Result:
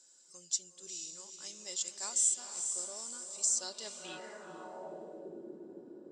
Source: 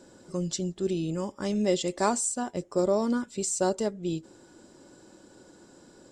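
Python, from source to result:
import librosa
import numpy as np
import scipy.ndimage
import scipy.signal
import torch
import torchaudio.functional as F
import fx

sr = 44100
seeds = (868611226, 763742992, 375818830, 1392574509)

y = fx.echo_diffused(x, sr, ms=461, feedback_pct=46, wet_db=-6.5)
y = fx.filter_sweep_bandpass(y, sr, from_hz=6800.0, to_hz=350.0, start_s=3.46, end_s=5.39, q=2.2)
y = y * 10.0 ** (3.0 / 20.0)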